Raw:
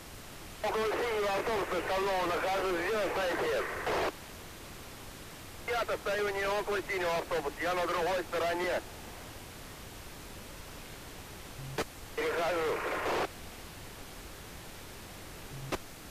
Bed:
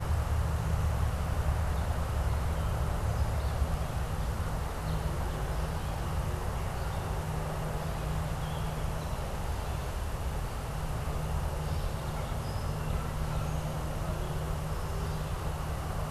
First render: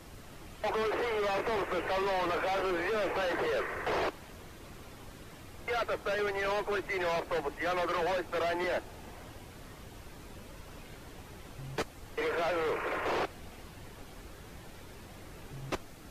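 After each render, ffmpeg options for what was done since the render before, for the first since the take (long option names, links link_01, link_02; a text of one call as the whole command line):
ffmpeg -i in.wav -af "afftdn=noise_reduction=7:noise_floor=-48" out.wav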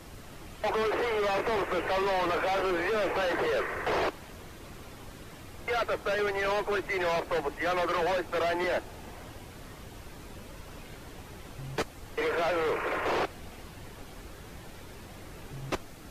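ffmpeg -i in.wav -af "volume=3dB" out.wav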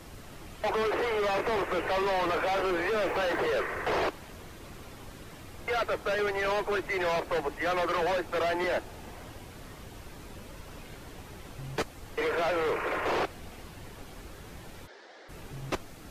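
ffmpeg -i in.wav -filter_complex "[0:a]asettb=1/sr,asplit=3[link_01][link_02][link_03];[link_01]atrim=end=2.904[link_04];[link_02]atrim=start=2.9:end=3.45,asetpts=PTS-STARTPTS,afade=type=in:duration=0.004:curve=qsin,afade=type=out:start_time=0.546:duration=0.004:curve=qsin,aeval=exprs='val(0)*gte(abs(val(0)),0.00355)':channel_layout=same[link_05];[link_03]atrim=start=3.446[link_06];[link_04][link_05]acrossfade=duration=0.004:curve1=hsin:curve2=qsin[link_07];[link_07][link_06]acrossfade=duration=0.004:curve1=qsin:curve2=hsin,asplit=3[link_08][link_09][link_10];[link_08]afade=type=out:start_time=14.86:duration=0.02[link_11];[link_09]highpass=frequency=390:width=0.5412,highpass=frequency=390:width=1.3066,equalizer=frequency=1100:width_type=q:width=4:gain=-6,equalizer=frequency=1700:width_type=q:width=4:gain=5,equalizer=frequency=2600:width_type=q:width=4:gain=-9,lowpass=frequency=5400:width=0.5412,lowpass=frequency=5400:width=1.3066,afade=type=in:start_time=14.86:duration=0.02,afade=type=out:start_time=15.28:duration=0.02[link_12];[link_10]afade=type=in:start_time=15.28:duration=0.02[link_13];[link_11][link_12][link_13]amix=inputs=3:normalize=0" out.wav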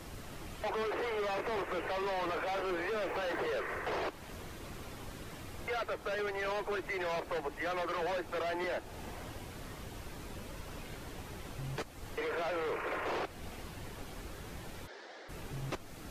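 ffmpeg -i in.wav -af "alimiter=level_in=6dB:limit=-24dB:level=0:latency=1:release=245,volume=-6dB,areverse,acompressor=mode=upward:threshold=-46dB:ratio=2.5,areverse" out.wav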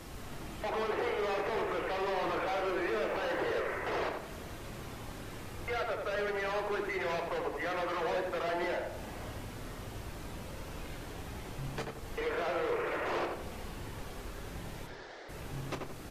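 ffmpeg -i in.wav -filter_complex "[0:a]asplit=2[link_01][link_02];[link_02]adelay=29,volume=-11dB[link_03];[link_01][link_03]amix=inputs=2:normalize=0,asplit=2[link_04][link_05];[link_05]adelay=86,lowpass=frequency=2000:poles=1,volume=-3dB,asplit=2[link_06][link_07];[link_07]adelay=86,lowpass=frequency=2000:poles=1,volume=0.46,asplit=2[link_08][link_09];[link_09]adelay=86,lowpass=frequency=2000:poles=1,volume=0.46,asplit=2[link_10][link_11];[link_11]adelay=86,lowpass=frequency=2000:poles=1,volume=0.46,asplit=2[link_12][link_13];[link_13]adelay=86,lowpass=frequency=2000:poles=1,volume=0.46,asplit=2[link_14][link_15];[link_15]adelay=86,lowpass=frequency=2000:poles=1,volume=0.46[link_16];[link_04][link_06][link_08][link_10][link_12][link_14][link_16]amix=inputs=7:normalize=0" out.wav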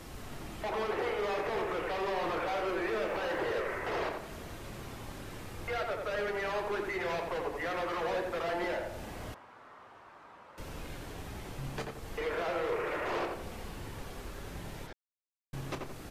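ffmpeg -i in.wav -filter_complex "[0:a]asettb=1/sr,asplit=3[link_01][link_02][link_03];[link_01]atrim=end=9.344[link_04];[link_02]atrim=start=9.34:end=10.58,asetpts=PTS-STARTPTS,afade=type=in:duration=0.004:curve=qsin,afade=type=out:start_time=1.236:duration=0.004:curve=qsin,bandpass=frequency=1100:width_type=q:width=1.8[link_05];[link_03]atrim=start=10.576[link_06];[link_04][link_05]acrossfade=duration=0.004:curve1=hsin:curve2=qsin[link_07];[link_07][link_06]acrossfade=duration=0.004:curve1=qsin:curve2=hsin,asplit=3[link_08][link_09][link_10];[link_08]atrim=end=14.93,asetpts=PTS-STARTPTS,afade=type=out:start_time=14.926:duration=0.004:curve=hsin[link_11];[link_09]atrim=start=14.93:end=15.53,asetpts=PTS-STARTPTS,volume=0[link_12];[link_10]atrim=start=15.53,asetpts=PTS-STARTPTS,afade=type=in:duration=0.004:curve=hsin[link_13];[link_11][link_12][link_13]concat=n=3:v=0:a=1" out.wav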